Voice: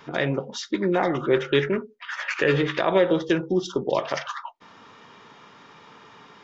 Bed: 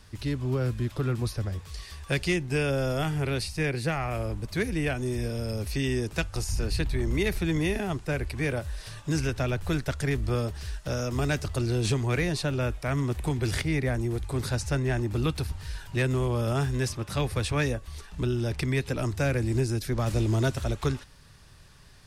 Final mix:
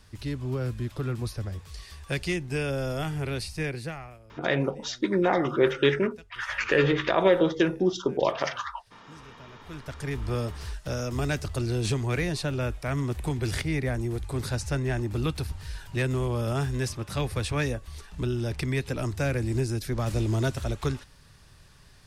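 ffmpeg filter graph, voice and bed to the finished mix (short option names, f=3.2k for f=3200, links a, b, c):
-filter_complex "[0:a]adelay=4300,volume=-1dB[a];[1:a]volume=19dB,afade=t=out:st=3.63:d=0.56:silence=0.1,afade=t=in:st=9.6:d=0.81:silence=0.0841395[b];[a][b]amix=inputs=2:normalize=0"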